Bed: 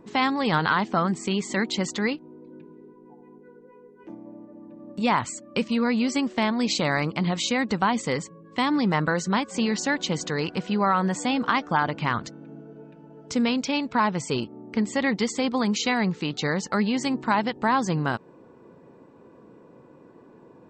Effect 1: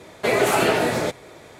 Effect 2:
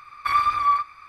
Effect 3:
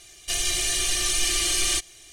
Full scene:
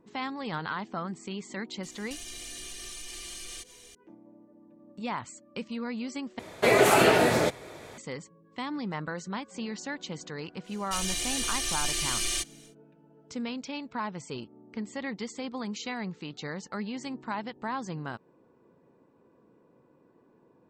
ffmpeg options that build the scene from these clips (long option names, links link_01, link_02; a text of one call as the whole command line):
ffmpeg -i bed.wav -i cue0.wav -i cue1.wav -i cue2.wav -filter_complex "[3:a]asplit=2[link_01][link_02];[0:a]volume=-11.5dB[link_03];[link_01]acompressor=threshold=-35dB:ratio=6:attack=3.2:release=140:knee=1:detection=peak[link_04];[link_03]asplit=2[link_05][link_06];[link_05]atrim=end=6.394[link_07];[1:a]atrim=end=1.59,asetpts=PTS-STARTPTS,volume=-1dB[link_08];[link_06]atrim=start=7.976[link_09];[link_04]atrim=end=2.12,asetpts=PTS-STARTPTS,volume=-4dB,afade=type=in:duration=0.004:curve=hsin,afade=type=out:start_time=2.116:duration=0.004:curve=hsin,adelay=1830[link_10];[link_02]atrim=end=2.12,asetpts=PTS-STARTPTS,volume=-6.5dB,afade=type=in:duration=0.1,afade=type=out:start_time=2.02:duration=0.1,adelay=10630[link_11];[link_07][link_08]acrossfade=duration=0.004:curve1=hsin:curve2=hsin[link_12];[link_12][link_09]acrossfade=duration=0.004:curve1=hsin:curve2=hsin[link_13];[link_13][link_10][link_11]amix=inputs=3:normalize=0" out.wav